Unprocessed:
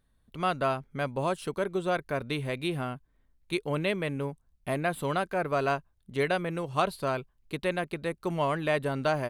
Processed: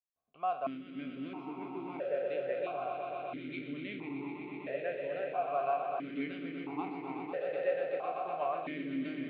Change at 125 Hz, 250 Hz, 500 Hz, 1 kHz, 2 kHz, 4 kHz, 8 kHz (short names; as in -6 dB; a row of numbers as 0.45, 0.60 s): -18.0 dB, -5.0 dB, -5.5 dB, -5.0 dB, -10.5 dB, -14.0 dB, under -30 dB